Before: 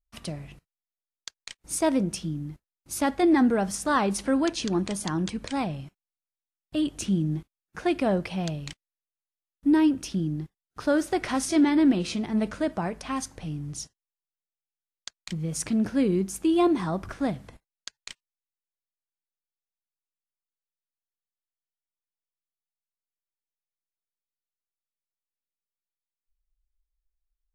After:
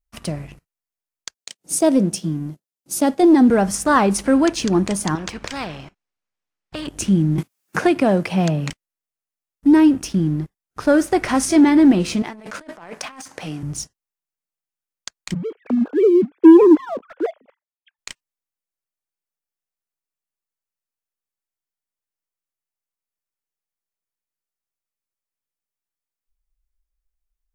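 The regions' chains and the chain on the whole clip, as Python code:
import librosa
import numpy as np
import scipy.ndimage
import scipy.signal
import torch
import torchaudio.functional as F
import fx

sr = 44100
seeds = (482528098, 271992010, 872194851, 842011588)

y = fx.chain(x, sr, fx.highpass(hz=140.0, slope=24),
    fx.band_shelf(hz=1500.0, db=-8.5, octaves=1.7), at=(1.34, 3.5))
y = fx.chain(y, sr, fx.lowpass(hz=4600.0, slope=12),
    fx.spectral_comp(ratio=2.0), at=(5.15, 6.88))
y = fx.chain(y, sr, fx.highpass(hz=110.0, slope=24),
    fx.band_squash(depth_pct=70), at=(7.38, 8.7))
y = fx.chain(y, sr, fx.weighting(curve='A'),
    fx.over_compress(threshold_db=-42.0, ratio=-1.0), at=(12.22, 13.63))
y = fx.chain(y, sr, fx.sine_speech(),
    fx.peak_eq(hz=460.0, db=9.5, octaves=0.75), at=(15.34, 17.99))
y = fx.peak_eq(y, sr, hz=3700.0, db=-5.0, octaves=0.73)
y = fx.leveller(y, sr, passes=1)
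y = y * 10.0 ** (5.0 / 20.0)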